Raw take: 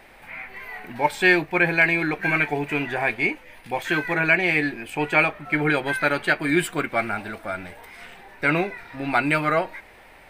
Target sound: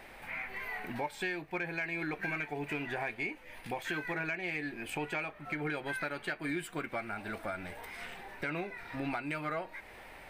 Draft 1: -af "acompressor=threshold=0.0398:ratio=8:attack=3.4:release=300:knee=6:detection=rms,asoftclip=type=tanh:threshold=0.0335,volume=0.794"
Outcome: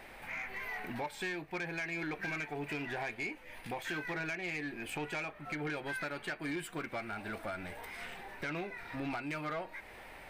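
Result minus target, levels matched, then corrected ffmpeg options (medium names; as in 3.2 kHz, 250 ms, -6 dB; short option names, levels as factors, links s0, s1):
saturation: distortion +14 dB
-af "acompressor=threshold=0.0398:ratio=8:attack=3.4:release=300:knee=6:detection=rms,asoftclip=type=tanh:threshold=0.1,volume=0.794"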